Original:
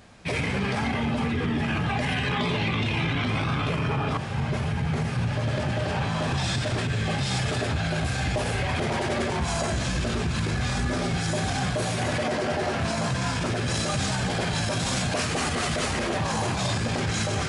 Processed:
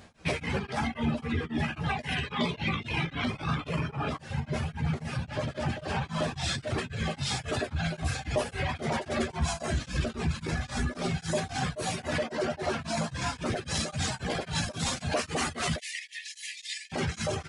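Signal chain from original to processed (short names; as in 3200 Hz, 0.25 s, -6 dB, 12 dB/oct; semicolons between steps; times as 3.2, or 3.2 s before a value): reverb removal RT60 1.6 s; 15.78–16.92 brick-wall FIR high-pass 1700 Hz; doubler 13 ms -7 dB; beating tremolo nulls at 3.7 Hz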